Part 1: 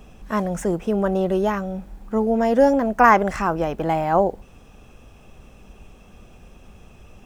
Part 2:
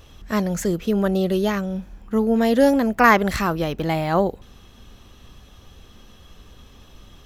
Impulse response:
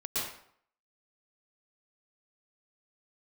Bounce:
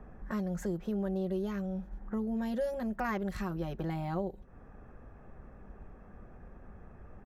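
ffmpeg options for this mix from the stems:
-filter_complex "[0:a]firequalizer=gain_entry='entry(1100,0);entry(1800,4);entry(2800,-24)':delay=0.05:min_phase=1,acrossover=split=450|3000[link_01][link_02][link_03];[link_02]acompressor=threshold=-32dB:ratio=6[link_04];[link_01][link_04][link_03]amix=inputs=3:normalize=0,volume=-4.5dB,asplit=2[link_05][link_06];[1:a]lowshelf=frequency=340:gain=6.5,adelay=6.4,volume=-12dB[link_07];[link_06]apad=whole_len=320049[link_08];[link_07][link_08]sidechaingate=range=-33dB:threshold=-41dB:ratio=16:detection=peak[link_09];[link_05][link_09]amix=inputs=2:normalize=0,acompressor=threshold=-39dB:ratio=2"

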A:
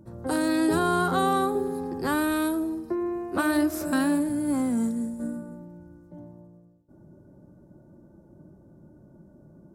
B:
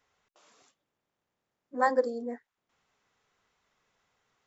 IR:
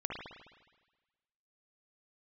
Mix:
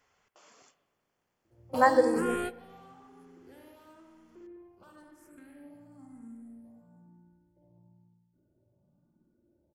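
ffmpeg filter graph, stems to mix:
-filter_complex "[0:a]acompressor=threshold=-31dB:ratio=2,asoftclip=type=tanh:threshold=-28.5dB,asplit=2[link_01][link_02];[link_02]afreqshift=1[link_03];[link_01][link_03]amix=inputs=2:normalize=1,adelay=1450,volume=3dB,asplit=2[link_04][link_05];[link_05]volume=-23dB[link_06];[1:a]volume=2dB,asplit=3[link_07][link_08][link_09];[link_08]volume=-12.5dB[link_10];[link_09]apad=whole_len=493484[link_11];[link_04][link_11]sidechaingate=range=-33dB:threshold=-52dB:ratio=16:detection=peak[link_12];[2:a]atrim=start_sample=2205[link_13];[link_06][link_10]amix=inputs=2:normalize=0[link_14];[link_14][link_13]afir=irnorm=-1:irlink=0[link_15];[link_12][link_07][link_15]amix=inputs=3:normalize=0,bandreject=frequency=3800:width=6.8"

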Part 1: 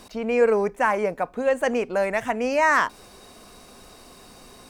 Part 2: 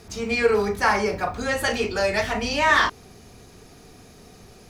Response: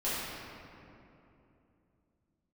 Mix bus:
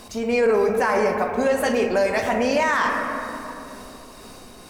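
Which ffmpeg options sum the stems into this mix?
-filter_complex "[0:a]tremolo=f=2.1:d=0.36,volume=2dB,asplit=2[link_01][link_02];[link_02]volume=-10dB[link_03];[1:a]highshelf=frequency=7900:gain=11.5,volume=-7.5dB[link_04];[2:a]atrim=start_sample=2205[link_05];[link_03][link_05]afir=irnorm=-1:irlink=0[link_06];[link_01][link_04][link_06]amix=inputs=3:normalize=0,alimiter=limit=-11.5dB:level=0:latency=1:release=15"

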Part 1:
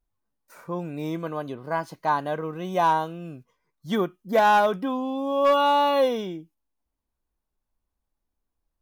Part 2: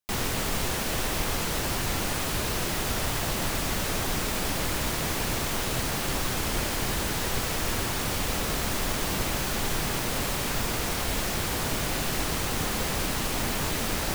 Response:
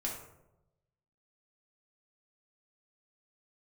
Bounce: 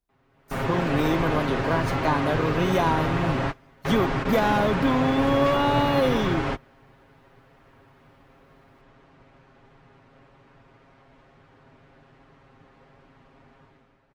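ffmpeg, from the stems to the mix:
-filter_complex "[0:a]acrossover=split=360|1400[link_01][link_02][link_03];[link_01]acompressor=threshold=-34dB:ratio=4[link_04];[link_02]acompressor=threshold=-40dB:ratio=4[link_05];[link_03]acompressor=threshold=-44dB:ratio=4[link_06];[link_04][link_05][link_06]amix=inputs=3:normalize=0,volume=-1.5dB,asplit=2[link_07][link_08];[1:a]lowpass=1800,aecho=1:1:7.4:0.99,volume=-8.5dB[link_09];[link_08]apad=whole_len=623934[link_10];[link_09][link_10]sidechaingate=range=-29dB:threshold=-56dB:ratio=16:detection=peak[link_11];[link_07][link_11]amix=inputs=2:normalize=0,highpass=frequency=56:poles=1,dynaudnorm=framelen=110:gausssize=9:maxgain=11.5dB"

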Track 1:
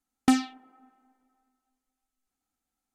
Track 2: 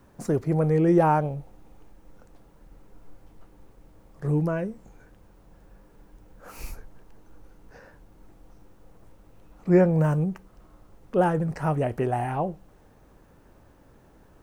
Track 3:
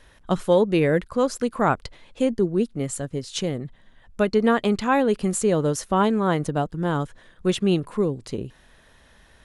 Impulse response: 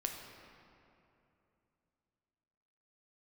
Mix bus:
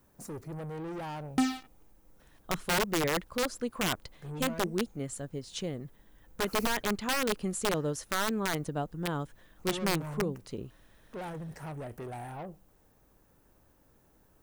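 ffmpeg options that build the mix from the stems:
-filter_complex "[0:a]acrusher=bits=6:mix=0:aa=0.5,adelay=1100,volume=1.5dB[link_01];[1:a]aemphasis=mode=production:type=50kf,asoftclip=type=tanh:threshold=-26dB,volume=-10.5dB,asplit=2[link_02][link_03];[2:a]aeval=exprs='(mod(4.22*val(0)+1,2)-1)/4.22':channel_layout=same,adelay=2200,volume=-9.5dB[link_04];[link_03]apad=whole_len=178279[link_05];[link_01][link_05]sidechaincompress=threshold=-51dB:ratio=5:attack=16:release=264[link_06];[link_06][link_02][link_04]amix=inputs=3:normalize=0"

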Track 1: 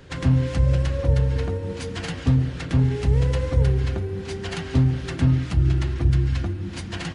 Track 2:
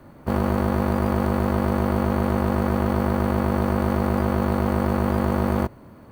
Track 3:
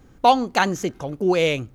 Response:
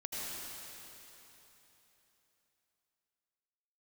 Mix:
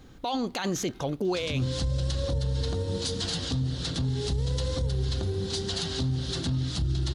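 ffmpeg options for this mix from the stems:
-filter_complex "[0:a]highshelf=frequency=3000:width_type=q:width=3:gain=8.5,acompressor=threshold=-24dB:ratio=3,adelay=1250,volume=0dB[link_01];[2:a]volume=0dB,equalizer=frequency=3800:width_type=o:width=0.77:gain=9.5,alimiter=limit=-11dB:level=0:latency=1,volume=0dB[link_02];[link_01][link_02]amix=inputs=2:normalize=0,alimiter=limit=-20.5dB:level=0:latency=1:release=19"

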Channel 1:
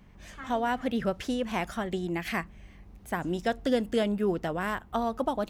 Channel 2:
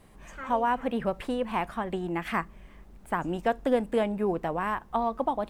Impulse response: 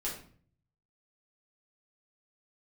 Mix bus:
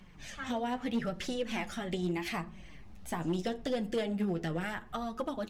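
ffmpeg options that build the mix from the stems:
-filter_complex "[0:a]equalizer=frequency=4300:width=0.31:gain=9.5,acompressor=threshold=-30dB:ratio=6,flanger=delay=0:depth=1.7:regen=-45:speed=1.5:shape=triangular,volume=2.5dB,asplit=2[link_01][link_02];[link_02]volume=-17.5dB[link_03];[1:a]lowpass=frequency=2200:width=0.5412,lowpass=frequency=2200:width=1.3066,equalizer=frequency=1200:width=0.31:gain=-5.5,adelay=0.5,volume=-3.5dB,asplit=2[link_04][link_05];[link_05]volume=-11.5dB[link_06];[2:a]atrim=start_sample=2205[link_07];[link_03][link_06]amix=inputs=2:normalize=0[link_08];[link_08][link_07]afir=irnorm=-1:irlink=0[link_09];[link_01][link_04][link_09]amix=inputs=3:normalize=0,flanger=delay=5.4:depth=7:regen=35:speed=0.78:shape=sinusoidal,asoftclip=type=hard:threshold=-25.5dB"

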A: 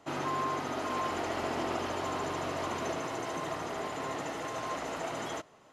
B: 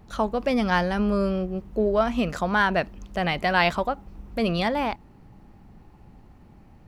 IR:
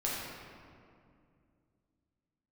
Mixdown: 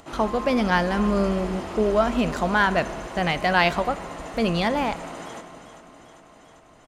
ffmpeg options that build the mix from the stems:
-filter_complex "[0:a]equalizer=frequency=8800:width=7.7:gain=11.5,volume=-4dB,asplit=3[link_01][link_02][link_03];[link_02]volume=-10.5dB[link_04];[link_03]volume=-7dB[link_05];[1:a]agate=range=-21dB:threshold=-38dB:ratio=16:detection=peak,volume=0.5dB,asplit=2[link_06][link_07];[link_07]volume=-20dB[link_08];[2:a]atrim=start_sample=2205[link_09];[link_04][link_08]amix=inputs=2:normalize=0[link_10];[link_10][link_09]afir=irnorm=-1:irlink=0[link_11];[link_05]aecho=0:1:396|792|1188|1584|1980|2376|2772|3168:1|0.54|0.292|0.157|0.085|0.0459|0.0248|0.0134[link_12];[link_01][link_06][link_11][link_12]amix=inputs=4:normalize=0,acompressor=mode=upward:threshold=-42dB:ratio=2.5"

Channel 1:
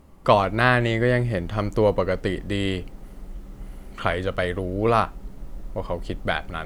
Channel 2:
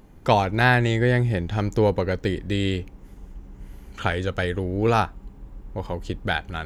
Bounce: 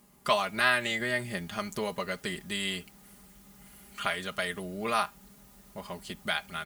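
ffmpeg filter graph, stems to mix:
ffmpeg -i stem1.wav -i stem2.wav -filter_complex "[0:a]highpass=frequency=1400:poles=1,volume=-5.5dB,asplit=2[link_01][link_02];[1:a]highpass=180,aemphasis=mode=reproduction:type=riaa,volume=-18.5dB[link_03];[link_02]apad=whole_len=293506[link_04];[link_03][link_04]sidechaincompress=threshold=-35dB:ratio=8:attack=16:release=170[link_05];[link_01][link_05]amix=inputs=2:normalize=0,aecho=1:1:4.9:0.76,crystalizer=i=2:c=0" out.wav

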